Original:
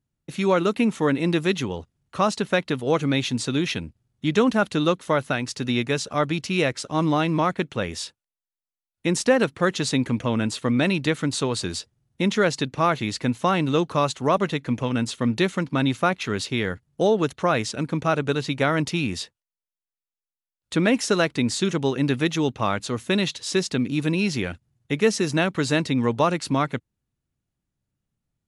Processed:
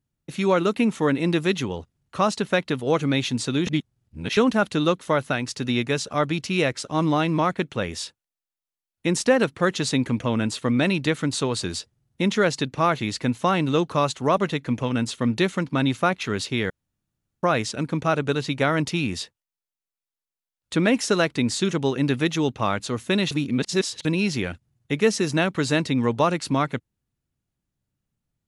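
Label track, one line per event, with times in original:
3.670000	4.370000	reverse
16.700000	17.430000	room tone
23.310000	24.050000	reverse

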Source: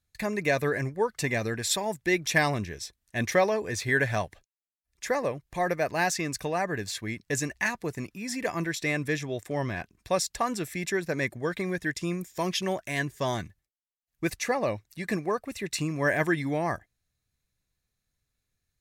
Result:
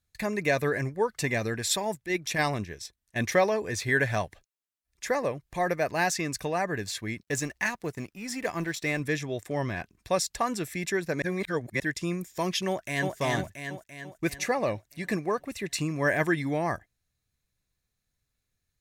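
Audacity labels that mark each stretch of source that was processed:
1.950000	3.160000	transient shaper attack -10 dB, sustain -5 dB
7.210000	9.000000	companding laws mixed up coded by A
11.220000	11.800000	reverse
12.680000	13.150000	echo throw 340 ms, feedback 55%, level -2.5 dB

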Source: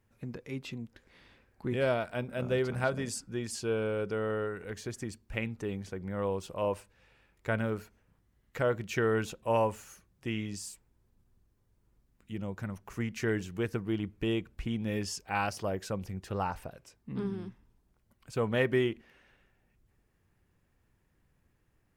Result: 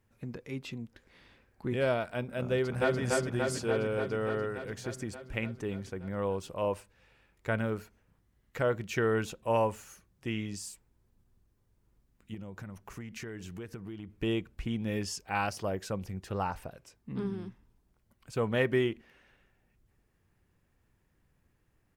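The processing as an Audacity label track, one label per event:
2.520000	3.000000	echo throw 290 ms, feedback 75%, level -1.5 dB
12.340000	14.220000	compression, threshold -38 dBFS

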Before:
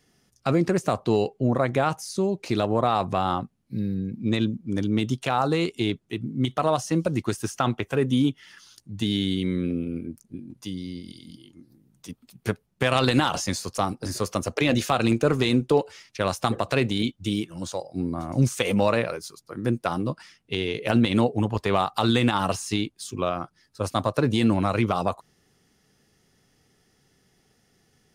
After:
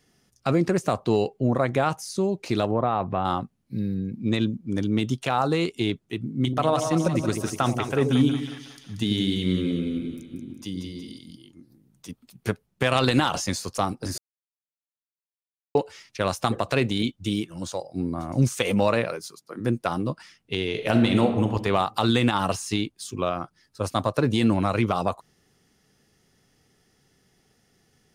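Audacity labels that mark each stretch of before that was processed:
2.710000	3.250000	distance through air 450 m
6.300000	11.180000	two-band feedback delay split 680 Hz, lows 86 ms, highs 183 ms, level -6 dB
14.180000	15.750000	mute
19.050000	19.590000	high-pass 88 Hz -> 180 Hz 24 dB/octave
20.670000	21.450000	reverb throw, RT60 1 s, DRR 5.5 dB

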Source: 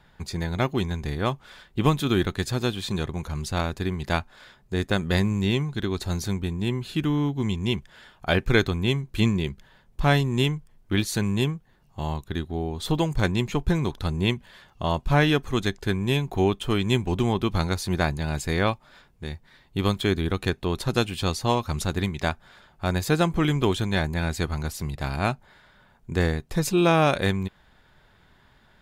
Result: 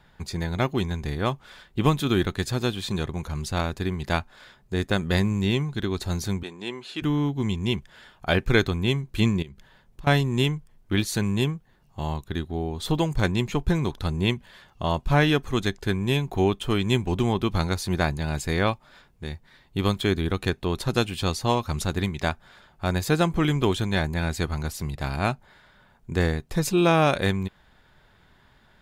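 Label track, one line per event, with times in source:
6.430000	7.020000	band-pass 410–7500 Hz
9.420000	10.070000	compression, threshold -38 dBFS

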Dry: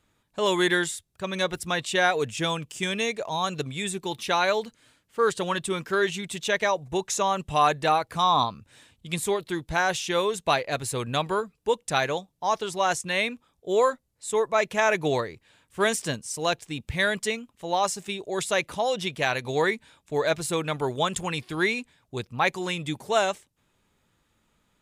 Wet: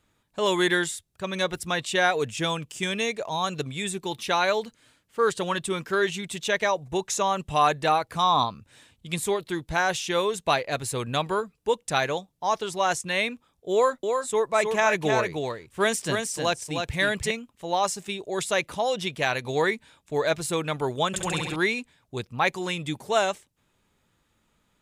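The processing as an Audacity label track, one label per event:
13.720000	17.310000	delay 311 ms -5 dB
21.070000	21.560000	flutter echo walls apart 11.6 m, dies away in 1.2 s

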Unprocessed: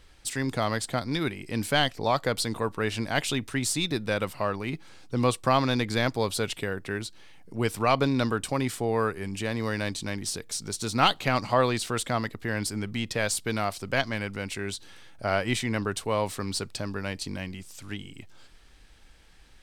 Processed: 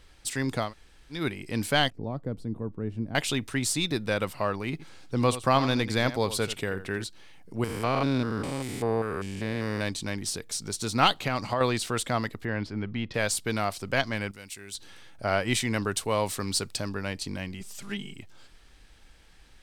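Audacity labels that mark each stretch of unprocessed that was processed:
0.660000	1.170000	room tone, crossfade 0.16 s
1.900000	3.150000	FFT filter 260 Hz 0 dB, 830 Hz -16 dB, 3.7 kHz -29 dB
4.710000	7.040000	delay 84 ms -13.5 dB
7.640000	9.810000	spectrogram pixelated in time every 200 ms
11.150000	11.610000	compression, threshold -22 dBFS
12.450000	13.140000	distance through air 270 m
14.310000	14.750000	pre-emphasis filter coefficient 0.8
15.510000	16.890000	treble shelf 4.2 kHz +6 dB
17.600000	18.140000	comb 5 ms, depth 95%

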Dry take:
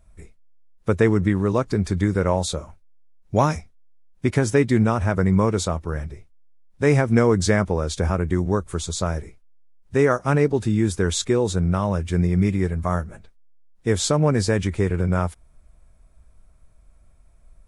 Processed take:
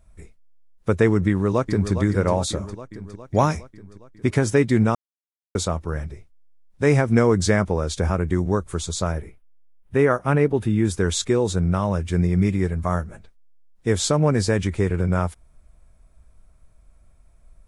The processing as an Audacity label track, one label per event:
1.270000	1.920000	echo throw 410 ms, feedback 65%, level -9.5 dB
4.950000	5.550000	mute
9.120000	10.850000	high-order bell 5.7 kHz -9 dB 1.2 oct

